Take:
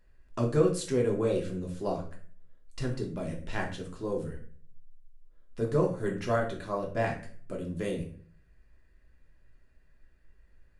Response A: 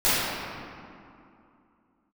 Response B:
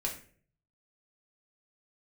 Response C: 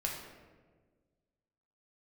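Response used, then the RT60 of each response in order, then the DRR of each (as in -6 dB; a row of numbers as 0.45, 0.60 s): B; 2.6, 0.50, 1.5 s; -16.5, -1.5, -1.5 dB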